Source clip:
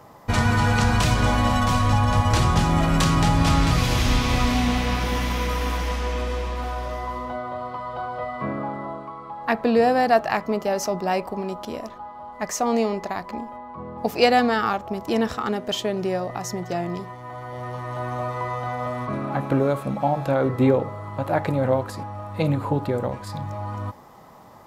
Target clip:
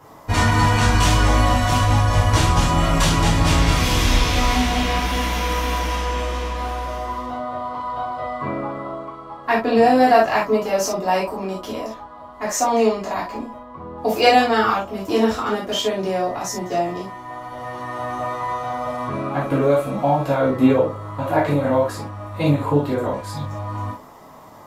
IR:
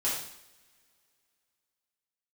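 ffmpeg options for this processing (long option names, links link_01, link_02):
-filter_complex "[1:a]atrim=start_sample=2205,atrim=end_sample=3969,asetrate=48510,aresample=44100[link_01];[0:a][link_01]afir=irnorm=-1:irlink=0,volume=-1dB"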